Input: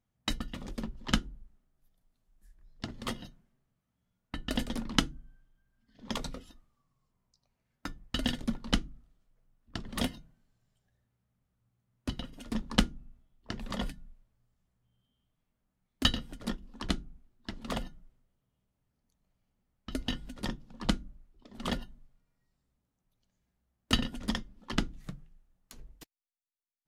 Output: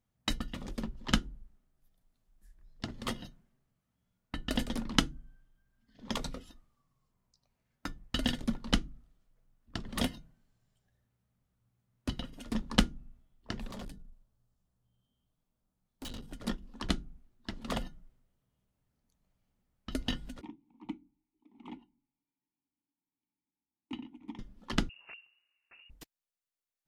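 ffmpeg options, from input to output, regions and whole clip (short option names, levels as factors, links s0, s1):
-filter_complex "[0:a]asettb=1/sr,asplit=3[s0][s1][s2];[s0]atrim=end=13.674[s3];[s1]atrim=start=13.67:end=16.31,asetpts=PTS-STARTPTS,afade=t=in:d=0.004:c=qsin,afade=t=out:st=2.636:d=0.004:c=qsin,equalizer=f=2100:w=1.4:g=-7.5,bandreject=f=50:t=h:w=6,bandreject=f=100:t=h:w=6,bandreject=f=150:t=h:w=6,bandreject=f=200:t=h:w=6,bandreject=f=250:t=h:w=6,bandreject=f=300:t=h:w=6,bandreject=f=350:t=h:w=6,bandreject=f=400:t=h:w=6,bandreject=f=450:t=h:w=6,aeval=exprs='(tanh(100*val(0)+0.35)-tanh(0.35))/100':c=same[s4];[s2]atrim=start=16.306[s5];[s3][s4]acrossfade=d=0.004:c1=hsin:c2=qsin[s6];[s6][s5]acrossfade=d=0.004:c1=qsin:c2=hsin,asettb=1/sr,asplit=3[s7][s8][s9];[s7]atrim=end=20.414[s10];[s8]atrim=start=20.41:end=24.39,asetpts=PTS-STARTPTS,afade=t=in:d=0.004:c=qsin,afade=t=out:st=3.976:d=0.004:c=qsin,asplit=3[s11][s12][s13];[s11]bandpass=f=300:t=q:w=8,volume=1[s14];[s12]bandpass=f=870:t=q:w=8,volume=0.501[s15];[s13]bandpass=f=2240:t=q:w=8,volume=0.355[s16];[s14][s15][s16]amix=inputs=3:normalize=0,equalizer=f=4800:w=3.8:g=-10[s17];[s9]atrim=start=24.386[s18];[s10][s17]acrossfade=d=0.004:c1=hsin:c2=qsin[s19];[s19][s18]acrossfade=d=0.004:c1=qsin:c2=hsin,asettb=1/sr,asplit=3[s20][s21][s22];[s20]atrim=end=24.894[s23];[s21]atrim=start=24.89:end=25.9,asetpts=PTS-STARTPTS,afade=t=in:d=0.004:c=qsin,afade=t=out:st=1.006:d=0.004:c=qsin,highpass=82,aeval=exprs='(mod(119*val(0)+1,2)-1)/119':c=same,lowpass=f=2500:t=q:w=0.5098,lowpass=f=2500:t=q:w=0.6013,lowpass=f=2500:t=q:w=0.9,lowpass=f=2500:t=q:w=2.563,afreqshift=-2900[s24];[s22]atrim=start=25.896[s25];[s23][s24]acrossfade=d=0.004:c1=hsin:c2=qsin[s26];[s26][s25]acrossfade=d=0.004:c1=qsin:c2=hsin"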